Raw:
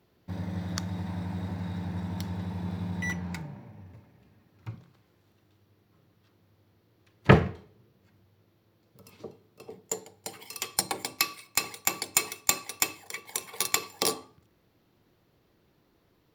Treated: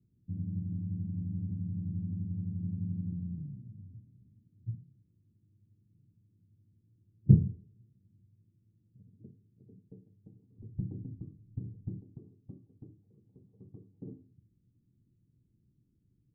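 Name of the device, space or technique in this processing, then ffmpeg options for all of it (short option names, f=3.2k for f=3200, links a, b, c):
the neighbour's flat through the wall: -filter_complex "[0:a]lowpass=f=250:w=0.5412,lowpass=f=250:w=1.3066,equalizer=f=120:t=o:w=0.42:g=6,asettb=1/sr,asplit=3[a][b][c];[a]atrim=end=10.584[d];[b]atrim=start=10.58:end=12.01,asetpts=PTS-STARTPTS,afade=t=in:d=0.004:c=qsin,afade=t=out:st=1.426:d=0.004:c=qsin,aemphasis=mode=reproduction:type=riaa[e];[c]atrim=start=12.006[f];[d][e]acrossfade=d=0.004:c1=hsin:c2=qsin[g];[g][f]acrossfade=d=0.004:c1=qsin:c2=hsin,volume=-2.5dB"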